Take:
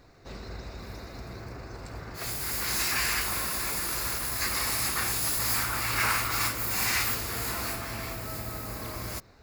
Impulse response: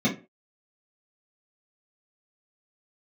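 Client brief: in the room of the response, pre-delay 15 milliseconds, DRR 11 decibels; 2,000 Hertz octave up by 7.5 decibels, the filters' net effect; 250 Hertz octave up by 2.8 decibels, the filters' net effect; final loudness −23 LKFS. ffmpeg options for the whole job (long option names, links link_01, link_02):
-filter_complex "[0:a]equalizer=frequency=250:width_type=o:gain=3.5,equalizer=frequency=2000:width_type=o:gain=9,asplit=2[link_01][link_02];[1:a]atrim=start_sample=2205,adelay=15[link_03];[link_02][link_03]afir=irnorm=-1:irlink=0,volume=-22.5dB[link_04];[link_01][link_04]amix=inputs=2:normalize=0,volume=1.5dB"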